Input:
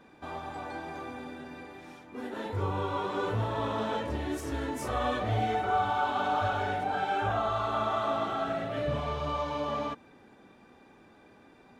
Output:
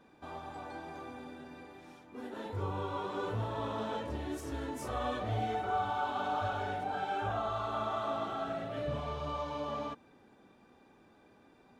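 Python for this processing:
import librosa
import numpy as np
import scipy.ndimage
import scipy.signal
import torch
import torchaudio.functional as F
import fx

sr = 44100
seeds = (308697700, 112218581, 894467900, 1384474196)

y = fx.peak_eq(x, sr, hz=2000.0, db=-3.0, octaves=0.75)
y = y * 10.0 ** (-5.0 / 20.0)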